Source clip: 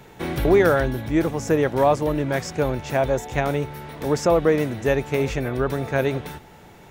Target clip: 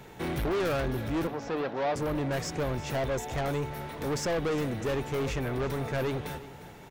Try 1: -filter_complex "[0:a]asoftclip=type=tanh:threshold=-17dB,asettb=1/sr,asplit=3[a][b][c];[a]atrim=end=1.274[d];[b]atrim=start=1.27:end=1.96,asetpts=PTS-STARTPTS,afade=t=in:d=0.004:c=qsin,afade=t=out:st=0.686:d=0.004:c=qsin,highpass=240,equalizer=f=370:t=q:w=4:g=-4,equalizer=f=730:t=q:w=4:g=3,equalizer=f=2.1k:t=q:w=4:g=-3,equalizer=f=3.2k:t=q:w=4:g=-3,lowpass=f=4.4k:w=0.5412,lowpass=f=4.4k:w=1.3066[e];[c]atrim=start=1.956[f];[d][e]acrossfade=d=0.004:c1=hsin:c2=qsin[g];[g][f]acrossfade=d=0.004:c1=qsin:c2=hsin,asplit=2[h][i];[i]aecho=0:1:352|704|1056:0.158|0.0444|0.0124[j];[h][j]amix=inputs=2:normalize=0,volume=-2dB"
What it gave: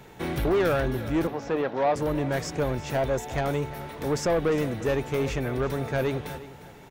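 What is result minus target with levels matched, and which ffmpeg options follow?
soft clip: distortion -6 dB
-filter_complex "[0:a]asoftclip=type=tanh:threshold=-24.5dB,asettb=1/sr,asplit=3[a][b][c];[a]atrim=end=1.274[d];[b]atrim=start=1.27:end=1.96,asetpts=PTS-STARTPTS,afade=t=in:d=0.004:c=qsin,afade=t=out:st=0.686:d=0.004:c=qsin,highpass=240,equalizer=f=370:t=q:w=4:g=-4,equalizer=f=730:t=q:w=4:g=3,equalizer=f=2.1k:t=q:w=4:g=-3,equalizer=f=3.2k:t=q:w=4:g=-3,lowpass=f=4.4k:w=0.5412,lowpass=f=4.4k:w=1.3066[e];[c]atrim=start=1.956[f];[d][e]acrossfade=d=0.004:c1=hsin:c2=qsin[g];[g][f]acrossfade=d=0.004:c1=qsin:c2=hsin,asplit=2[h][i];[i]aecho=0:1:352|704|1056:0.158|0.0444|0.0124[j];[h][j]amix=inputs=2:normalize=0,volume=-2dB"

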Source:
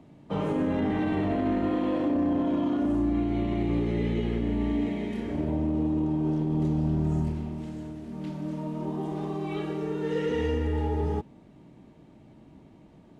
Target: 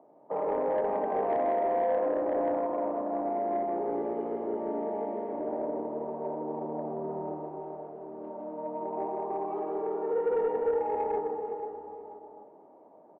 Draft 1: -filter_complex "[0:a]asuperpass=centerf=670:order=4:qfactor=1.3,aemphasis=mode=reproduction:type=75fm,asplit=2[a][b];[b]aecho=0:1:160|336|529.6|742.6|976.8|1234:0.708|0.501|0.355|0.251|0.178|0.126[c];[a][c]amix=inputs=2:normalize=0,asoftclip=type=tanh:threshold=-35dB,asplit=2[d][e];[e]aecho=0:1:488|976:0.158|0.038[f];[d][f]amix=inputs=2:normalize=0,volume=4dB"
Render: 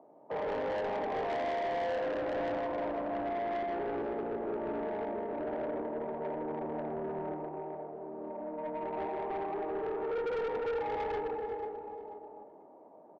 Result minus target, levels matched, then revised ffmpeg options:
soft clip: distortion +12 dB
-filter_complex "[0:a]asuperpass=centerf=670:order=4:qfactor=1.3,aemphasis=mode=reproduction:type=75fm,asplit=2[a][b];[b]aecho=0:1:160|336|529.6|742.6|976.8|1234:0.708|0.501|0.355|0.251|0.178|0.126[c];[a][c]amix=inputs=2:normalize=0,asoftclip=type=tanh:threshold=-24dB,asplit=2[d][e];[e]aecho=0:1:488|976:0.158|0.038[f];[d][f]amix=inputs=2:normalize=0,volume=4dB"

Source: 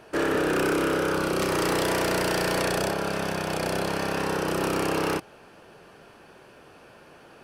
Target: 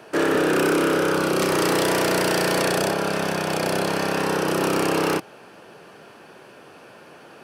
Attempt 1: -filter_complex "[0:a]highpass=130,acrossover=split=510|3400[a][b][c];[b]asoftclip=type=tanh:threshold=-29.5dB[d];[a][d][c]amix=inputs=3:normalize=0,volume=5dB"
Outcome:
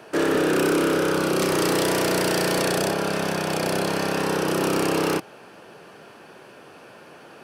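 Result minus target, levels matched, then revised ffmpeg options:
soft clip: distortion +9 dB
-filter_complex "[0:a]highpass=130,acrossover=split=510|3400[a][b][c];[b]asoftclip=type=tanh:threshold=-22.5dB[d];[a][d][c]amix=inputs=3:normalize=0,volume=5dB"

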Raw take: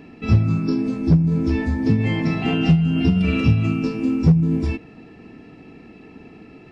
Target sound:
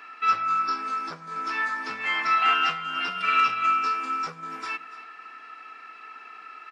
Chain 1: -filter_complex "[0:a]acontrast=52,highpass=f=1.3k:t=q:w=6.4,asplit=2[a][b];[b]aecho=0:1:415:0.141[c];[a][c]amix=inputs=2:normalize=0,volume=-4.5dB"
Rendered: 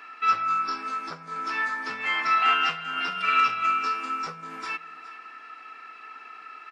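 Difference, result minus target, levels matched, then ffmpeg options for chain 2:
echo 0.126 s late
-filter_complex "[0:a]acontrast=52,highpass=f=1.3k:t=q:w=6.4,asplit=2[a][b];[b]aecho=0:1:289:0.141[c];[a][c]amix=inputs=2:normalize=0,volume=-4.5dB"

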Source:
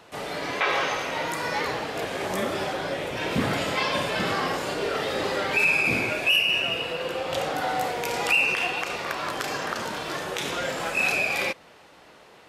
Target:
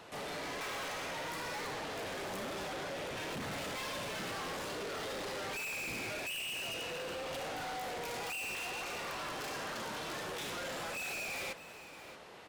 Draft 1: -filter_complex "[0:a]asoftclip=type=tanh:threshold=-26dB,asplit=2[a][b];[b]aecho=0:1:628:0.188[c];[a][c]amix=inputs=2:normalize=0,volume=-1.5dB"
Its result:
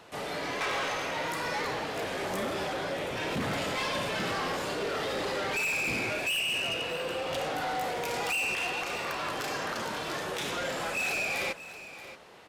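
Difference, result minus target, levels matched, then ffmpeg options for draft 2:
soft clip: distortion -6 dB
-filter_complex "[0:a]asoftclip=type=tanh:threshold=-37.5dB,asplit=2[a][b];[b]aecho=0:1:628:0.188[c];[a][c]amix=inputs=2:normalize=0,volume=-1.5dB"

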